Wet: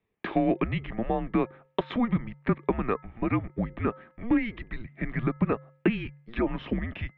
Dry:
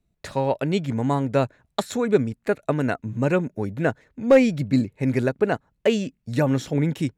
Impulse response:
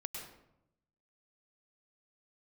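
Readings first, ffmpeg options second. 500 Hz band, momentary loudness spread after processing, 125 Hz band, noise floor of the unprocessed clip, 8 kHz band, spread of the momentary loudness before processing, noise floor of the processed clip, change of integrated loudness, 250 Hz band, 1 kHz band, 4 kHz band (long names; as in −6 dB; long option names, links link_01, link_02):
−10.0 dB, 7 LU, −7.0 dB, −73 dBFS, below −40 dB, 8 LU, −68 dBFS, −6.0 dB, −4.5 dB, −4.0 dB, −9.0 dB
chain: -af "bandreject=frequency=1700:width=9.2,alimiter=limit=-13dB:level=0:latency=1:release=105,bandreject=frequency=383.5:width_type=h:width=4,bandreject=frequency=767:width_type=h:width=4,bandreject=frequency=1150.5:width_type=h:width=4,bandreject=frequency=1534:width_type=h:width=4,bandreject=frequency=1917.5:width_type=h:width=4,bandreject=frequency=2301:width_type=h:width=4,acompressor=threshold=-26dB:ratio=4,highpass=frequency=370:width_type=q:width=0.5412,highpass=frequency=370:width_type=q:width=1.307,lowpass=frequency=3100:width_type=q:width=0.5176,lowpass=frequency=3100:width_type=q:width=0.7071,lowpass=frequency=3100:width_type=q:width=1.932,afreqshift=-240,volume=6.5dB"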